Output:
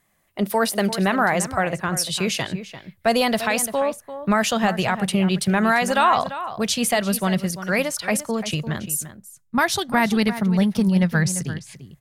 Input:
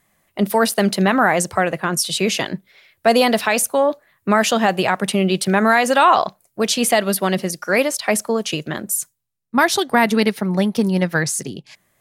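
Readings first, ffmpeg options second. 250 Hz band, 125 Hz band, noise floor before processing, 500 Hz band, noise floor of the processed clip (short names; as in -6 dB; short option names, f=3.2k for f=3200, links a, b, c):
-1.5 dB, +1.0 dB, -68 dBFS, -5.5 dB, -61 dBFS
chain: -filter_complex "[0:a]asubboost=boost=7.5:cutoff=120,asplit=2[a][b];[b]adelay=344,volume=-12dB,highshelf=f=4k:g=-7.74[c];[a][c]amix=inputs=2:normalize=0,volume=-3.5dB"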